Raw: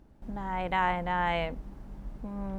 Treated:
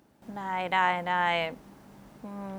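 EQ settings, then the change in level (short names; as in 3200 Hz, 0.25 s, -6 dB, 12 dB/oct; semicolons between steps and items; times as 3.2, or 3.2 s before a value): HPF 110 Hz 12 dB/oct; tilt +2 dB/oct; +2.5 dB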